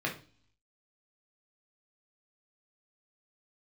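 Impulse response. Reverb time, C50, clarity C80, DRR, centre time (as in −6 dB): 0.40 s, 10.0 dB, 17.0 dB, −1.5 dB, 18 ms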